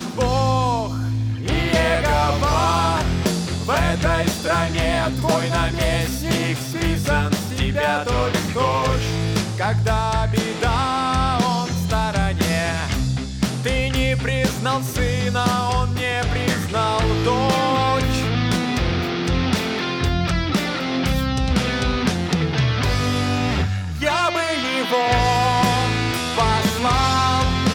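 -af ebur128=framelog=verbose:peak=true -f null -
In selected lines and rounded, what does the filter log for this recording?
Integrated loudness:
  I:         -20.2 LUFS
  Threshold: -30.2 LUFS
Loudness range:
  LRA:         1.9 LU
  Threshold: -40.3 LUFS
  LRA low:   -21.1 LUFS
  LRA high:  -19.2 LUFS
True peak:
  Peak:       -6.4 dBFS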